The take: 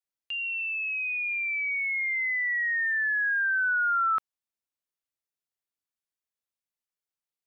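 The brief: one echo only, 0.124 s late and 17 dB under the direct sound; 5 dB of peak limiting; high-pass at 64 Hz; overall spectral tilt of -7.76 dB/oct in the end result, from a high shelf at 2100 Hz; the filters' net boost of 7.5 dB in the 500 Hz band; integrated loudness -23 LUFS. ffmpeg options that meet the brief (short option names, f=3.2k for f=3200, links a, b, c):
-af "highpass=64,equalizer=f=500:t=o:g=9,highshelf=f=2.1k:g=4.5,alimiter=limit=-24dB:level=0:latency=1,aecho=1:1:124:0.141,volume=2.5dB"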